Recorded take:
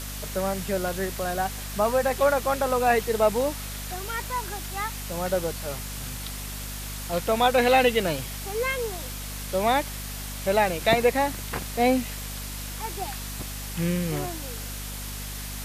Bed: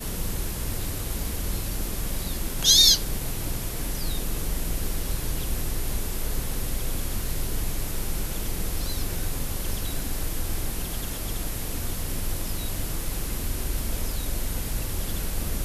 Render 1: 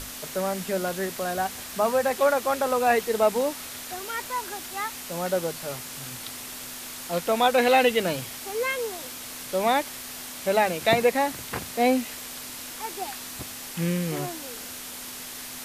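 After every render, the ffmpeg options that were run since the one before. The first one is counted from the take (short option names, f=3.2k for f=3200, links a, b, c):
-af "bandreject=f=50:t=h:w=6,bandreject=f=100:t=h:w=6,bandreject=f=150:t=h:w=6,bandreject=f=200:t=h:w=6"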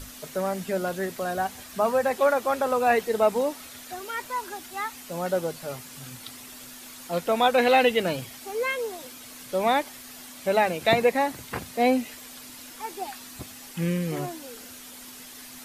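-af "afftdn=nr=8:nf=-39"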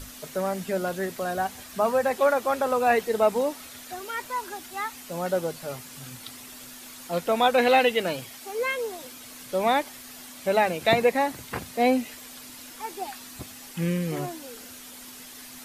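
-filter_complex "[0:a]asettb=1/sr,asplit=3[a][b][c];[a]atrim=end=7.794[d];[b]atrim=start=7.79:end=8.59,asetpts=PTS-STARTPTS,afade=t=in:d=0.004:c=qsin,afade=t=out:st=0.796:d=0.004:c=qsin,lowshelf=f=220:g=-7[e];[c]atrim=start=8.586[f];[d][e]acrossfade=d=0.004:c1=hsin:c2=qsin[g];[g][f]acrossfade=d=0.004:c1=qsin:c2=hsin"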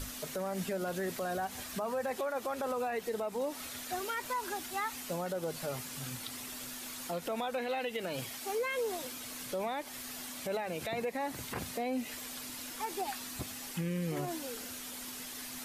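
-af "acompressor=threshold=-27dB:ratio=6,alimiter=level_in=2.5dB:limit=-24dB:level=0:latency=1:release=70,volume=-2.5dB"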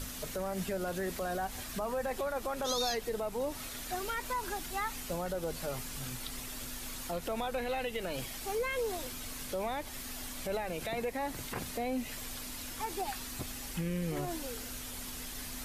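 -filter_complex "[1:a]volume=-20dB[a];[0:a][a]amix=inputs=2:normalize=0"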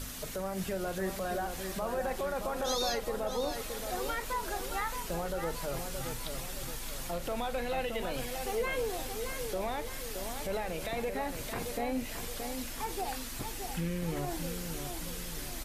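-filter_complex "[0:a]asplit=2[a][b];[b]adelay=42,volume=-13.5dB[c];[a][c]amix=inputs=2:normalize=0,asplit=2[d][e];[e]adelay=622,lowpass=f=3.9k:p=1,volume=-6.5dB,asplit=2[f][g];[g]adelay=622,lowpass=f=3.9k:p=1,volume=0.51,asplit=2[h][i];[i]adelay=622,lowpass=f=3.9k:p=1,volume=0.51,asplit=2[j][k];[k]adelay=622,lowpass=f=3.9k:p=1,volume=0.51,asplit=2[l][m];[m]adelay=622,lowpass=f=3.9k:p=1,volume=0.51,asplit=2[n][o];[o]adelay=622,lowpass=f=3.9k:p=1,volume=0.51[p];[f][h][j][l][n][p]amix=inputs=6:normalize=0[q];[d][q]amix=inputs=2:normalize=0"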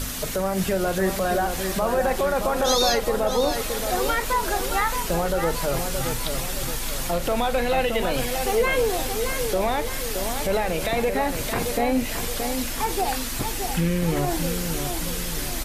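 -af "volume=11.5dB"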